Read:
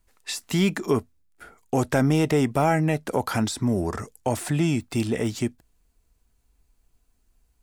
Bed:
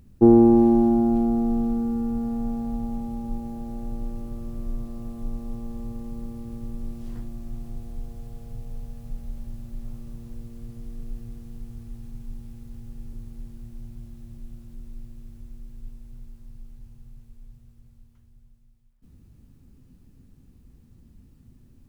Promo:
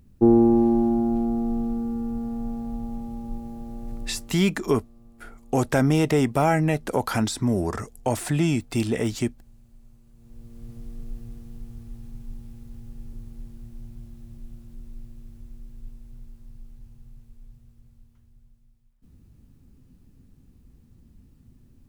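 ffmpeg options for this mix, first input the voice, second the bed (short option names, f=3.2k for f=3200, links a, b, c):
-filter_complex "[0:a]adelay=3800,volume=0.5dB[a];[1:a]volume=13dB,afade=t=out:st=3.99:d=0.41:silence=0.199526,afade=t=in:st=10.15:d=0.57:silence=0.16788[b];[a][b]amix=inputs=2:normalize=0"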